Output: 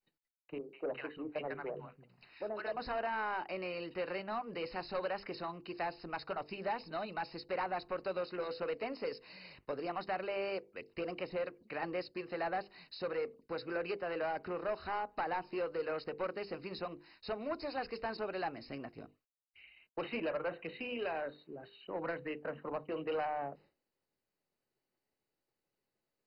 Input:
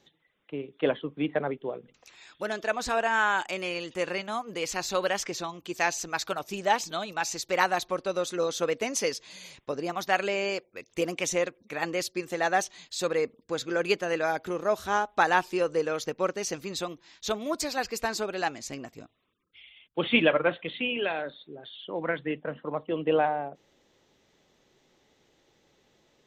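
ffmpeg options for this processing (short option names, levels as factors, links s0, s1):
-filter_complex "[0:a]acrossover=split=450|1100[s0][s1][s2];[s0]acompressor=threshold=0.0112:ratio=4[s3];[s1]acompressor=threshold=0.0355:ratio=4[s4];[s2]acompressor=threshold=0.0141:ratio=4[s5];[s3][s4][s5]amix=inputs=3:normalize=0,asettb=1/sr,asplit=3[s6][s7][s8];[s6]atrim=end=0.584[s9];[s7]atrim=start=0.58:end=2.77,asetpts=PTS-STARTPTS,afade=t=in:d=0.004:c=qsin,afade=t=out:st=2.186:d=0.004:c=qsin,acrossover=split=190|920[s10][s11][s12];[s12]adelay=150[s13];[s10]adelay=340[s14];[s14][s11][s13]amix=inputs=3:normalize=0,atrim=end_sample=96579[s15];[s8]atrim=start=2.766[s16];[s9][s15]acrossfade=d=0.004:c1=hsin:c2=qsin[s17];[s17][s16]acrossfade=d=0.004:c1=qsin:c2=hsin,asoftclip=type=tanh:threshold=0.0422,equalizer=f=7200:t=o:w=0.36:g=-11,bandreject=f=50:t=h:w=6,bandreject=f=100:t=h:w=6,bandreject=f=150:t=h:w=6,bandreject=f=200:t=h:w=6,bandreject=f=250:t=h:w=6,bandreject=f=300:t=h:w=6,bandreject=f=350:t=h:w=6,bandreject=f=400:t=h:w=6,bandreject=f=450:t=h:w=6,bandreject=f=500:t=h:w=6,agate=range=0.0224:threshold=0.00224:ratio=3:detection=peak,highshelf=f=3000:g=-5.5,volume=0.75" -ar 48000 -c:a mp2 -b:a 32k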